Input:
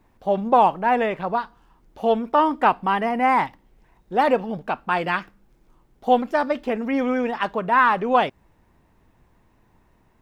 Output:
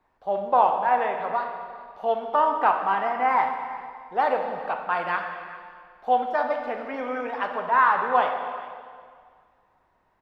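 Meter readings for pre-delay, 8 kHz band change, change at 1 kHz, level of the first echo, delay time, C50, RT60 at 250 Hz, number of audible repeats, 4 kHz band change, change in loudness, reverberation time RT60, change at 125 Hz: 5 ms, no reading, -1.5 dB, -18.0 dB, 403 ms, 4.5 dB, 2.0 s, 1, -7.5 dB, -3.0 dB, 2.0 s, under -10 dB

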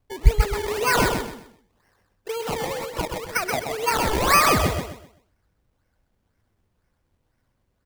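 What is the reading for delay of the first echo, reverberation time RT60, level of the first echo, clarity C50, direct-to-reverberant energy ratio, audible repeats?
128 ms, no reverb, -5.0 dB, no reverb, no reverb, 3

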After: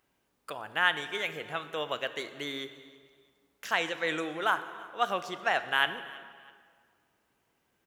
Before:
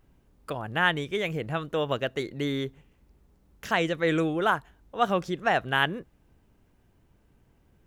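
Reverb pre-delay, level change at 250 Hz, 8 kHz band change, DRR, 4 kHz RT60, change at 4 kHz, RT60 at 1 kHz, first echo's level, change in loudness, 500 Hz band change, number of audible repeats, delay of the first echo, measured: 14 ms, -11.5 dB, 0.0 dB, 10.5 dB, 1.4 s, 0.0 dB, 1.9 s, -22.0 dB, -3.5 dB, -7.0 dB, 2, 326 ms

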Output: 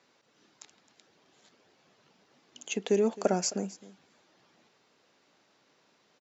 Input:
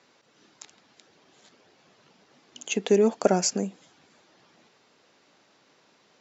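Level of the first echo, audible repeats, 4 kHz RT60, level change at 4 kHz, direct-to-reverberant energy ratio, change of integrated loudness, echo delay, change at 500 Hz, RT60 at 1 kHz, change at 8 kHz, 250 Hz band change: -18.5 dB, 1, no reverb, -5.5 dB, no reverb, -5.5 dB, 264 ms, -5.5 dB, no reverb, no reading, -5.5 dB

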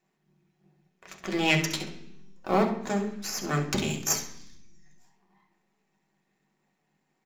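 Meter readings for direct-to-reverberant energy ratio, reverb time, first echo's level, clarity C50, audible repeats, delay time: 0.5 dB, 0.65 s, -10.0 dB, 8.0 dB, 1, 67 ms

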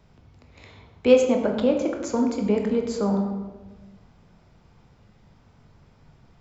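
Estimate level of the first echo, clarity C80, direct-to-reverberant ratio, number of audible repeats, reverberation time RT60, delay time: no echo, 7.0 dB, 2.5 dB, no echo, 1.2 s, no echo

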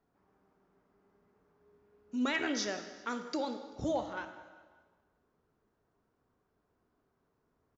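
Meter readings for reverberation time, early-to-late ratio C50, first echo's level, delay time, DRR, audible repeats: 1.5 s, 9.0 dB, -20.0 dB, 194 ms, 7.5 dB, 3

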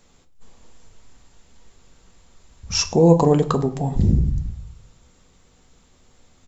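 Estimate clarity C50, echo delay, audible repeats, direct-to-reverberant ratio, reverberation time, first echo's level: 15.0 dB, 103 ms, 1, 7.0 dB, 0.50 s, -22.0 dB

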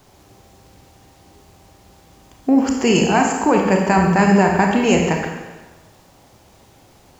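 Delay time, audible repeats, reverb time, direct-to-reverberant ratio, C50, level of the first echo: no echo, no echo, 1.2 s, 1.0 dB, 3.0 dB, no echo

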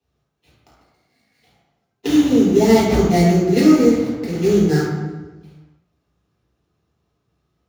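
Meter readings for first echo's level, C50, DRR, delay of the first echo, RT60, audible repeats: no echo, 0.0 dB, -7.0 dB, no echo, 1.2 s, no echo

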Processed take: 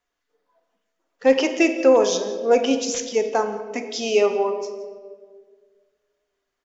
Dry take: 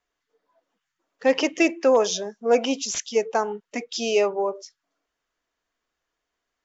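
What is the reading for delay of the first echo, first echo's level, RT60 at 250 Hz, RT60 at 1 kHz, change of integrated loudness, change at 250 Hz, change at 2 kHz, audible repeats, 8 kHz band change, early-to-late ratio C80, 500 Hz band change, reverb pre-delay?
171 ms, -20.0 dB, 1.8 s, 1.4 s, +2.5 dB, +3.5 dB, +1.0 dB, 1, no reading, 10.5 dB, +3.5 dB, 4 ms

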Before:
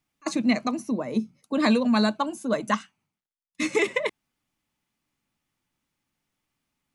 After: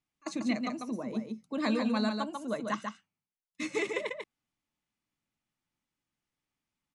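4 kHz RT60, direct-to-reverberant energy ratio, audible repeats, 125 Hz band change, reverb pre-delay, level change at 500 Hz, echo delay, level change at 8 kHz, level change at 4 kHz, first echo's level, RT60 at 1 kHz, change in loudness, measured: no reverb, no reverb, 1, -8.0 dB, no reverb, -8.0 dB, 144 ms, -8.5 dB, -8.0 dB, -5.0 dB, no reverb, -8.0 dB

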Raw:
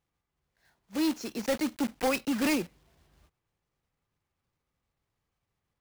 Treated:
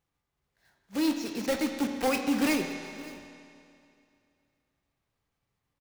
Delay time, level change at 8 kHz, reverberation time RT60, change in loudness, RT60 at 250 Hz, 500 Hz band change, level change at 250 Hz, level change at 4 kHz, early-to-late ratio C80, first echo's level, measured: 569 ms, +0.5 dB, 2.5 s, +1.0 dB, 2.5 s, +1.0 dB, +1.5 dB, +1.5 dB, 6.0 dB, -19.0 dB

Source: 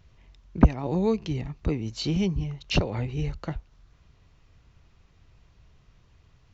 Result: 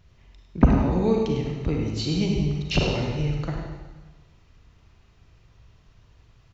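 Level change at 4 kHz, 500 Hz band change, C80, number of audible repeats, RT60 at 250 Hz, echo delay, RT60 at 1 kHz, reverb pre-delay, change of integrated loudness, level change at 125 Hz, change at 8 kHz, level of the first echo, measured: +3.0 dB, +4.0 dB, 2.5 dB, 1, 1.3 s, 102 ms, 1.3 s, 28 ms, +3.0 dB, +3.0 dB, no reading, -8.0 dB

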